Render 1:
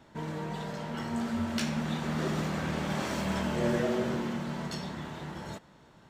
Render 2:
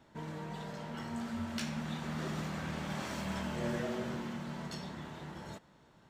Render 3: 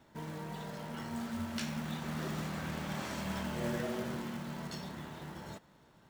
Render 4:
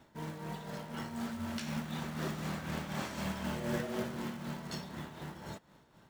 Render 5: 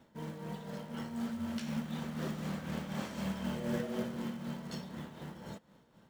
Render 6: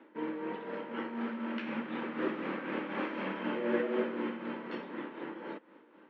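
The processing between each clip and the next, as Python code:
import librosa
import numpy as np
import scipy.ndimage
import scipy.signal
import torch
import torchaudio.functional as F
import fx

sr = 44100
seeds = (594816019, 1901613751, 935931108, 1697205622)

y1 = fx.dynamic_eq(x, sr, hz=410.0, q=1.1, threshold_db=-39.0, ratio=4.0, max_db=-4)
y1 = F.gain(torch.from_numpy(y1), -5.5).numpy()
y2 = fx.quant_float(y1, sr, bits=2)
y3 = y2 * (1.0 - 0.52 / 2.0 + 0.52 / 2.0 * np.cos(2.0 * np.pi * 4.0 * (np.arange(len(y2)) / sr)))
y3 = F.gain(torch.from_numpy(y3), 2.5).numpy()
y4 = fx.small_body(y3, sr, hz=(210.0, 490.0, 3100.0), ring_ms=30, db=7)
y4 = F.gain(torch.from_numpy(y4), -4.0).numpy()
y5 = fx.cabinet(y4, sr, low_hz=300.0, low_slope=24, high_hz=2500.0, hz=(310.0, 690.0, 2500.0), db=(9, -9, 3))
y5 = F.gain(torch.from_numpy(y5), 8.0).numpy()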